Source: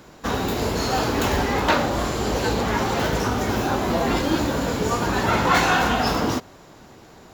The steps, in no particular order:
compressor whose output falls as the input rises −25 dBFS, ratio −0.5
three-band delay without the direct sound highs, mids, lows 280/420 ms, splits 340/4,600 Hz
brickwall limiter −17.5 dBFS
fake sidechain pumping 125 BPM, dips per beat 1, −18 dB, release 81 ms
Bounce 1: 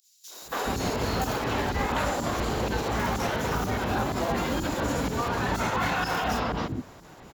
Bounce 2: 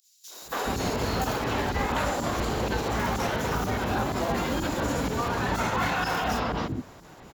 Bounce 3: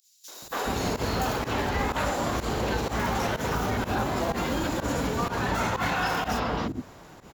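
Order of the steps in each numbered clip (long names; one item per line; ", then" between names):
brickwall limiter, then fake sidechain pumping, then three-band delay without the direct sound, then compressor whose output falls as the input rises
fake sidechain pumping, then brickwall limiter, then compressor whose output falls as the input rises, then three-band delay without the direct sound
brickwall limiter, then three-band delay without the direct sound, then compressor whose output falls as the input rises, then fake sidechain pumping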